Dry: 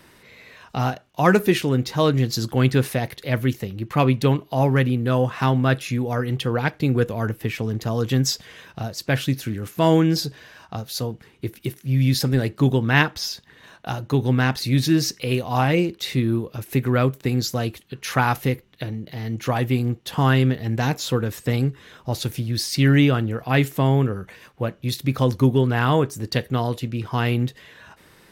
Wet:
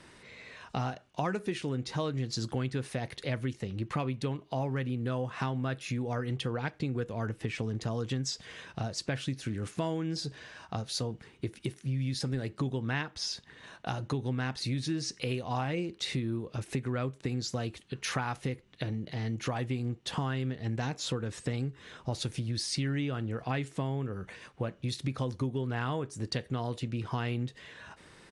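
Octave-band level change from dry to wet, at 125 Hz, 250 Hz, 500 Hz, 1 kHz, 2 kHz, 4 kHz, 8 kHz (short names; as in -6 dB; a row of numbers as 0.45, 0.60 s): -12.5, -13.0, -13.0, -12.5, -13.0, -9.5, -9.0 dB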